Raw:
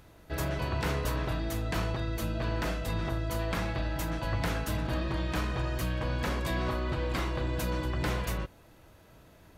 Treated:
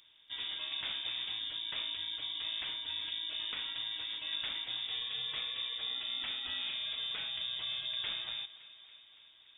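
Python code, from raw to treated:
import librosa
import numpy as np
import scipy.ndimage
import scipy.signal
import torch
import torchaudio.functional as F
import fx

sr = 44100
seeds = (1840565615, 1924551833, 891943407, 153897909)

y = fx.freq_invert(x, sr, carrier_hz=3600)
y = fx.echo_thinned(y, sr, ms=283, feedback_pct=70, hz=150.0, wet_db=-18.0)
y = F.gain(torch.from_numpy(y), -9.0).numpy()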